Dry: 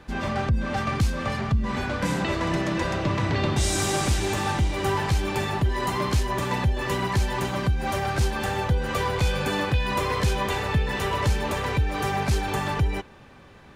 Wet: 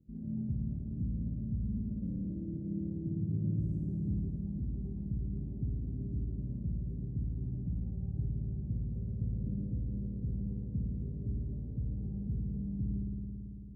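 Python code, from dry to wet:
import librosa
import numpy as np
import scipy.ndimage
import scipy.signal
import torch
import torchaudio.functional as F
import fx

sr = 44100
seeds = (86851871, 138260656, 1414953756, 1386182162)

y = scipy.signal.sosfilt(scipy.signal.cheby2(4, 70, 1000.0, 'lowpass', fs=sr, output='sos'), x)
y = fx.tilt_eq(y, sr, slope=4.5)
y = fx.rev_spring(y, sr, rt60_s=3.3, pass_ms=(55,), chirp_ms=20, drr_db=-3.0)
y = y * 10.0 ** (1.0 / 20.0)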